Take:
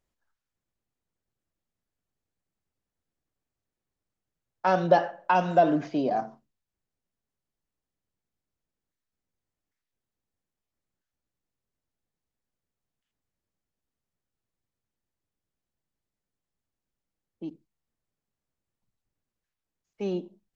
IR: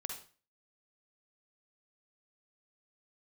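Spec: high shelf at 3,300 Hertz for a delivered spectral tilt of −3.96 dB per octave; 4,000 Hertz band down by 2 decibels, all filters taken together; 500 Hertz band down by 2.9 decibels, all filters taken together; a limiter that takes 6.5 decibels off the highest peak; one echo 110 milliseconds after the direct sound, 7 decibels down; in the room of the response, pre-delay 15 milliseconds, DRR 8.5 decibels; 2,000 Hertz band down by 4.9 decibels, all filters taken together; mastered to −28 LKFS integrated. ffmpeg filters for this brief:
-filter_complex "[0:a]equalizer=frequency=500:width_type=o:gain=-3.5,equalizer=frequency=2000:width_type=o:gain=-8.5,highshelf=frequency=3300:gain=8,equalizer=frequency=4000:width_type=o:gain=-5,alimiter=limit=-17dB:level=0:latency=1,aecho=1:1:110:0.447,asplit=2[link_01][link_02];[1:a]atrim=start_sample=2205,adelay=15[link_03];[link_02][link_03]afir=irnorm=-1:irlink=0,volume=-7.5dB[link_04];[link_01][link_04]amix=inputs=2:normalize=0,volume=1.5dB"

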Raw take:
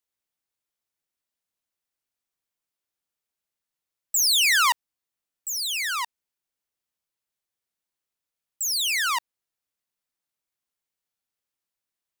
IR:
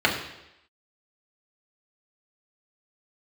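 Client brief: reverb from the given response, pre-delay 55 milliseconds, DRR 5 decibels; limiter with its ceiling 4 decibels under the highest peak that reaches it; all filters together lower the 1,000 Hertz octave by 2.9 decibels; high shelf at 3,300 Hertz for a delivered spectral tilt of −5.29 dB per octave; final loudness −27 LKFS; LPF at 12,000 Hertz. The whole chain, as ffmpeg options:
-filter_complex "[0:a]lowpass=12000,equalizer=frequency=1000:width_type=o:gain=-3,highshelf=frequency=3300:gain=-4,alimiter=limit=-20dB:level=0:latency=1,asplit=2[link_01][link_02];[1:a]atrim=start_sample=2205,adelay=55[link_03];[link_02][link_03]afir=irnorm=-1:irlink=0,volume=-22.5dB[link_04];[link_01][link_04]amix=inputs=2:normalize=0,volume=-1.5dB"

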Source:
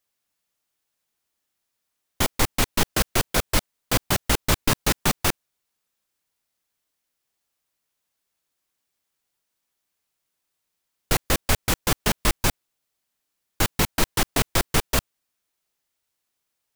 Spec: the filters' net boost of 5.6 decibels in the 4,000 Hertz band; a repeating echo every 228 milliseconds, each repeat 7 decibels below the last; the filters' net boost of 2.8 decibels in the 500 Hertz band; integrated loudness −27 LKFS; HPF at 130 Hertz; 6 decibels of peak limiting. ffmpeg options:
ffmpeg -i in.wav -af "highpass=130,equalizer=frequency=500:width_type=o:gain=3.5,equalizer=frequency=4000:width_type=o:gain=7,alimiter=limit=-11dB:level=0:latency=1,aecho=1:1:228|456|684|912|1140:0.447|0.201|0.0905|0.0407|0.0183,volume=-3dB" out.wav

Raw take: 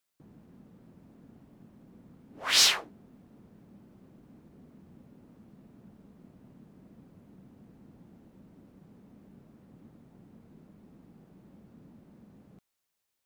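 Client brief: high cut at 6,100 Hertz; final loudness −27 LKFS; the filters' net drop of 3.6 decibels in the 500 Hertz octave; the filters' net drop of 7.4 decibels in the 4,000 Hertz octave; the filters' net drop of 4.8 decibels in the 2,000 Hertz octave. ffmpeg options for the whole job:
ffmpeg -i in.wav -af "lowpass=6100,equalizer=frequency=500:width_type=o:gain=-4.5,equalizer=frequency=2000:width_type=o:gain=-3.5,equalizer=frequency=4000:width_type=o:gain=-7.5,volume=3dB" out.wav

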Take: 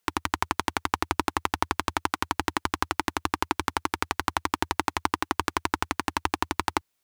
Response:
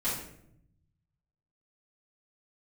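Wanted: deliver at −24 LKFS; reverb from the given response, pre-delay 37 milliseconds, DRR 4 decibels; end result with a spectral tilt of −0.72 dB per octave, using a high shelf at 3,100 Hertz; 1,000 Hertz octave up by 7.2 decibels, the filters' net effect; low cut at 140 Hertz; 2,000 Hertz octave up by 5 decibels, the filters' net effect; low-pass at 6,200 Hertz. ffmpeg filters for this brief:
-filter_complex "[0:a]highpass=140,lowpass=6200,equalizer=frequency=1000:width_type=o:gain=7.5,equalizer=frequency=2000:width_type=o:gain=5.5,highshelf=frequency=3100:gain=-5.5,asplit=2[link_01][link_02];[1:a]atrim=start_sample=2205,adelay=37[link_03];[link_02][link_03]afir=irnorm=-1:irlink=0,volume=-11dB[link_04];[link_01][link_04]amix=inputs=2:normalize=0,volume=-2dB"

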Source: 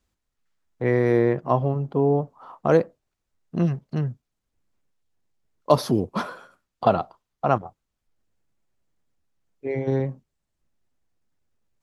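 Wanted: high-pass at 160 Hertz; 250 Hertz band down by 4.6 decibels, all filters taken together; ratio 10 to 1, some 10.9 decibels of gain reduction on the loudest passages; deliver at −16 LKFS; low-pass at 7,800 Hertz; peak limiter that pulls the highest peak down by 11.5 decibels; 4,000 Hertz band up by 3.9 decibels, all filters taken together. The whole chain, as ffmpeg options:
ffmpeg -i in.wav -af "highpass=160,lowpass=7800,equalizer=frequency=250:width_type=o:gain=-5.5,equalizer=frequency=4000:width_type=o:gain=5,acompressor=threshold=-24dB:ratio=10,volume=19dB,alimiter=limit=-3dB:level=0:latency=1" out.wav

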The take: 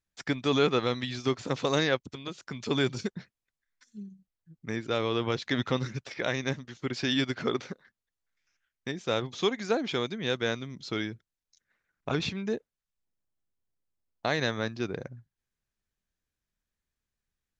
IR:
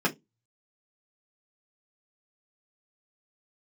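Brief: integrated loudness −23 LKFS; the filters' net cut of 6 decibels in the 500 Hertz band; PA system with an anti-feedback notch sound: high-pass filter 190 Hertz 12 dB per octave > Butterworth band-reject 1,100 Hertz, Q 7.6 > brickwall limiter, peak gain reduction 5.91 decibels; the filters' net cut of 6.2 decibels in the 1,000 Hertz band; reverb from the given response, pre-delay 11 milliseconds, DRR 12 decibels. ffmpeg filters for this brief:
-filter_complex "[0:a]equalizer=frequency=500:width_type=o:gain=-6,equalizer=frequency=1000:width_type=o:gain=-6,asplit=2[link_01][link_02];[1:a]atrim=start_sample=2205,adelay=11[link_03];[link_02][link_03]afir=irnorm=-1:irlink=0,volume=-23.5dB[link_04];[link_01][link_04]amix=inputs=2:normalize=0,highpass=190,asuperstop=centerf=1100:order=8:qfactor=7.6,volume=12dB,alimiter=limit=-9dB:level=0:latency=1"

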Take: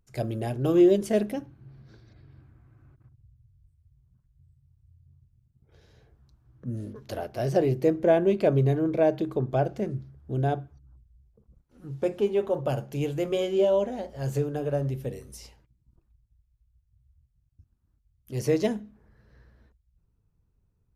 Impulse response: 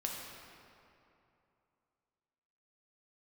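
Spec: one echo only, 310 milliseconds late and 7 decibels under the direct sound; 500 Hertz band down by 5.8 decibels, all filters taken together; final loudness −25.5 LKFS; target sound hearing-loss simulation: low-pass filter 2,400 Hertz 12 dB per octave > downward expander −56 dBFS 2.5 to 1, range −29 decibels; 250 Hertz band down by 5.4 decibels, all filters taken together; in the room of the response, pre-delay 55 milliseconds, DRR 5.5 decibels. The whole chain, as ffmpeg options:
-filter_complex "[0:a]equalizer=frequency=250:width_type=o:gain=-5.5,equalizer=frequency=500:width_type=o:gain=-6,aecho=1:1:310:0.447,asplit=2[link_01][link_02];[1:a]atrim=start_sample=2205,adelay=55[link_03];[link_02][link_03]afir=irnorm=-1:irlink=0,volume=-7.5dB[link_04];[link_01][link_04]amix=inputs=2:normalize=0,lowpass=2400,agate=range=-29dB:threshold=-56dB:ratio=2.5,volume=5dB"

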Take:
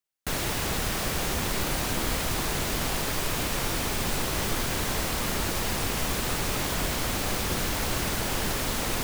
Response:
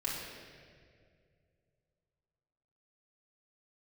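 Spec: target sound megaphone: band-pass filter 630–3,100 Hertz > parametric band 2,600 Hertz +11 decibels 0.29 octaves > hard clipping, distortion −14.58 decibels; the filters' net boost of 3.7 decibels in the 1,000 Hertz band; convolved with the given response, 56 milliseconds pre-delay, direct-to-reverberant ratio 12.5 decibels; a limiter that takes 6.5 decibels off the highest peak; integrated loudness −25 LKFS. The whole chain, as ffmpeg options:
-filter_complex "[0:a]equalizer=frequency=1000:width_type=o:gain=5.5,alimiter=limit=-20.5dB:level=0:latency=1,asplit=2[link_01][link_02];[1:a]atrim=start_sample=2205,adelay=56[link_03];[link_02][link_03]afir=irnorm=-1:irlink=0,volume=-17dB[link_04];[link_01][link_04]amix=inputs=2:normalize=0,highpass=630,lowpass=3100,equalizer=frequency=2600:width_type=o:width=0.29:gain=11,asoftclip=type=hard:threshold=-29.5dB,volume=7.5dB"

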